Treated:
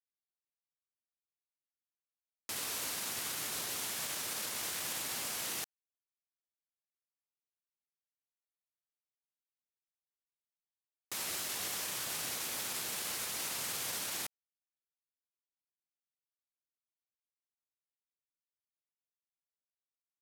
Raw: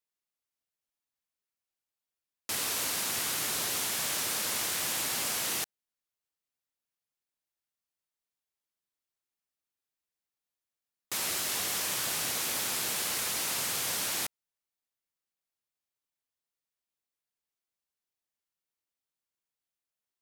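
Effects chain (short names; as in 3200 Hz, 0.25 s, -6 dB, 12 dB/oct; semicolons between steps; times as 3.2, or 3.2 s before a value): limiter -29 dBFS, peak gain reduction 9.5 dB; sample gate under -57.5 dBFS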